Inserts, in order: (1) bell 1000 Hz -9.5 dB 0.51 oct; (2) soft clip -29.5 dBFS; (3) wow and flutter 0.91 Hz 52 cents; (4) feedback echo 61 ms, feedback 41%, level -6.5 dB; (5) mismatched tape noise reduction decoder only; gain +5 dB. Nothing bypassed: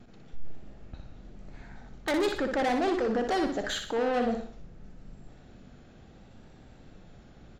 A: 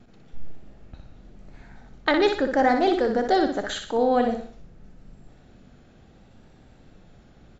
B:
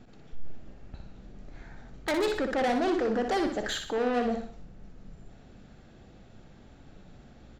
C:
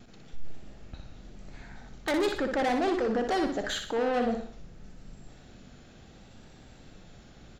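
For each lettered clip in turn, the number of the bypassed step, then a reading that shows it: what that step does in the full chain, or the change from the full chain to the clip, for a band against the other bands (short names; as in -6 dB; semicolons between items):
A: 2, distortion -8 dB; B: 3, momentary loudness spread change -2 LU; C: 5, momentary loudness spread change +10 LU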